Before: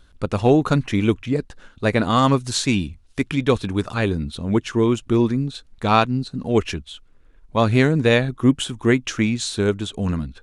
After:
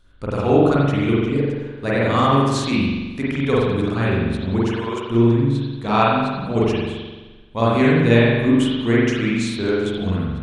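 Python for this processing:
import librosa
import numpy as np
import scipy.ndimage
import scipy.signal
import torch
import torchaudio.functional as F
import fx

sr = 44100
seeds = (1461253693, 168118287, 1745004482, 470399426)

y = fx.highpass(x, sr, hz=390.0, slope=24, at=(4.69, 5.1))
y = fx.rev_spring(y, sr, rt60_s=1.3, pass_ms=(43,), chirp_ms=50, drr_db=-7.5)
y = y * 10.0 ** (-6.5 / 20.0)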